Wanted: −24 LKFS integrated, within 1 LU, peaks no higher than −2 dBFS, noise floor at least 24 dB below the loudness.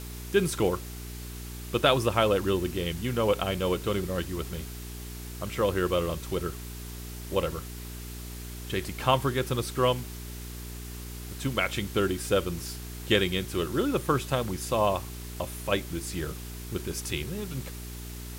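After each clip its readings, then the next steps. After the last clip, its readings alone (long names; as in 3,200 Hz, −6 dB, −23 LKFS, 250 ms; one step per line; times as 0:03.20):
mains hum 60 Hz; hum harmonics up to 420 Hz; level of the hum −37 dBFS; background noise floor −40 dBFS; target noise floor −53 dBFS; integrated loudness −29.0 LKFS; sample peak −7.0 dBFS; target loudness −24.0 LKFS
→ hum removal 60 Hz, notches 7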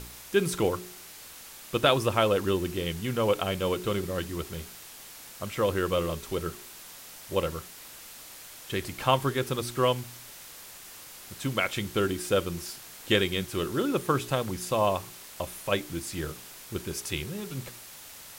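mains hum none found; background noise floor −47 dBFS; target noise floor −53 dBFS
→ broadband denoise 6 dB, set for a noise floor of −47 dBFS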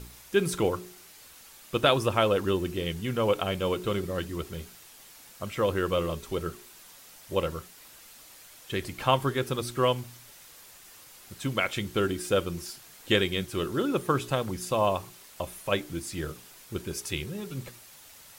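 background noise floor −52 dBFS; target noise floor −53 dBFS
→ broadband denoise 6 dB, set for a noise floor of −52 dBFS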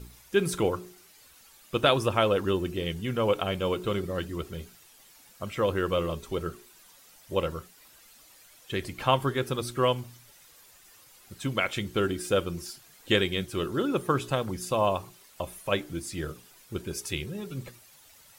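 background noise floor −56 dBFS; integrated loudness −29.0 LKFS; sample peak −7.5 dBFS; target loudness −24.0 LKFS
→ level +5 dB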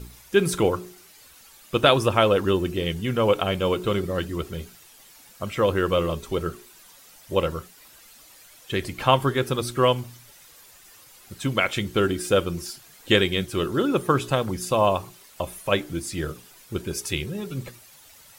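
integrated loudness −24.0 LKFS; sample peak −2.5 dBFS; background noise floor −51 dBFS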